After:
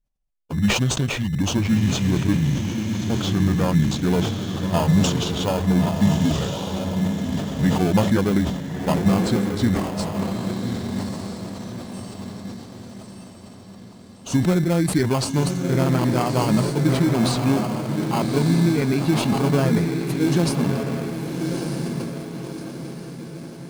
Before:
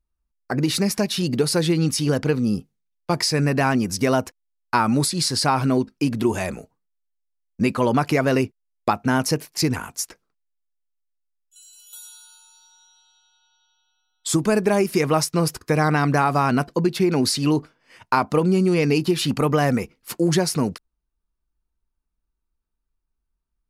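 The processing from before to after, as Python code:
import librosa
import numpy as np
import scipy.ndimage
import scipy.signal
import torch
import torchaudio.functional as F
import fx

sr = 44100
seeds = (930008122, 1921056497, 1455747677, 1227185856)

p1 = fx.pitch_glide(x, sr, semitones=-8.0, runs='ending unshifted')
p2 = fx.peak_eq(p1, sr, hz=190.0, db=5.5, octaves=0.82)
p3 = fx.echo_diffused(p2, sr, ms=1212, feedback_pct=47, wet_db=-4.0)
p4 = fx.sample_hold(p3, sr, seeds[0], rate_hz=1900.0, jitter_pct=0)
p5 = p3 + (p4 * librosa.db_to_amplitude(-3.5))
p6 = fx.sustainer(p5, sr, db_per_s=56.0)
y = p6 * librosa.db_to_amplitude(-6.5)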